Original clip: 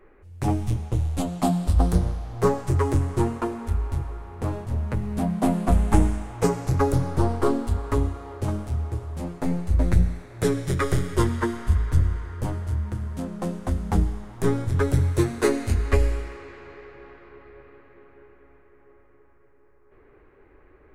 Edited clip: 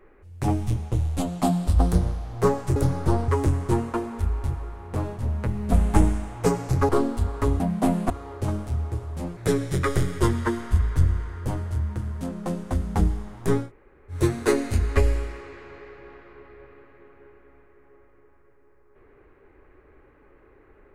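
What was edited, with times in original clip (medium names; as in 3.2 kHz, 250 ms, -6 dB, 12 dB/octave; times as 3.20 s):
5.20–5.70 s: move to 8.10 s
6.87–7.39 s: move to 2.76 s
9.37–10.33 s: delete
14.60–15.12 s: room tone, crossfade 0.16 s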